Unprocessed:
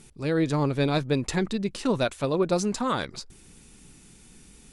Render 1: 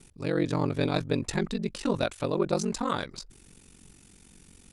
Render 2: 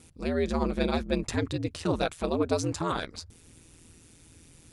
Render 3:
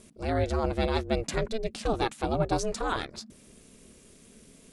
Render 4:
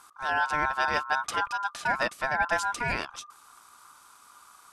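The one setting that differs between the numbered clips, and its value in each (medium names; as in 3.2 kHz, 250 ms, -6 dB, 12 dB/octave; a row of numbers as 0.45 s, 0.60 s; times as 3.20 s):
ring modulator, frequency: 23 Hz, 83 Hz, 220 Hz, 1.2 kHz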